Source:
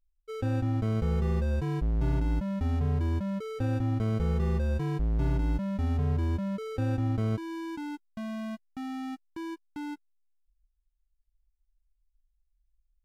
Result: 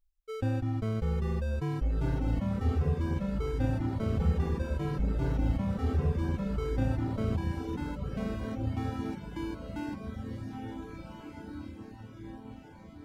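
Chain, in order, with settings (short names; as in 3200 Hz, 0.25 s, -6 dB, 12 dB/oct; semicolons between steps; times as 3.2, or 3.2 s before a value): diffused feedback echo 1.657 s, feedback 50%, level -4 dB; reverb removal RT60 1 s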